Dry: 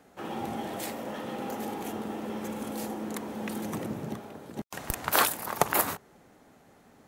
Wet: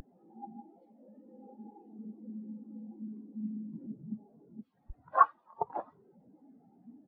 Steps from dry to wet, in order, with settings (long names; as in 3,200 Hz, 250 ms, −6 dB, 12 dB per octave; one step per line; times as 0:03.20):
linear delta modulator 32 kbit/s, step −28.5 dBFS
echo with shifted repeats 84 ms, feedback 45%, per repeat +52 Hz, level −9.5 dB
every bin expanded away from the loudest bin 4 to 1